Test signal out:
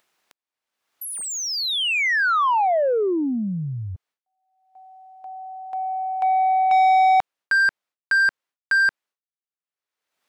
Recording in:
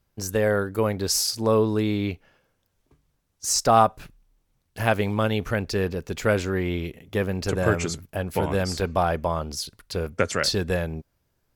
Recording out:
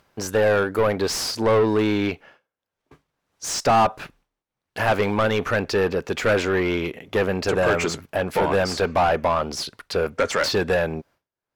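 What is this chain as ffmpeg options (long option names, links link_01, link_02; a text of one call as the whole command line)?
ffmpeg -i in.wav -filter_complex "[0:a]agate=range=-33dB:threshold=-49dB:ratio=3:detection=peak,asplit=2[link_01][link_02];[link_02]highpass=frequency=720:poles=1,volume=25dB,asoftclip=type=tanh:threshold=-4.5dB[link_03];[link_01][link_03]amix=inputs=2:normalize=0,lowpass=frequency=1800:poles=1,volume=-6dB,acompressor=mode=upward:threshold=-31dB:ratio=2.5,volume=-4.5dB" out.wav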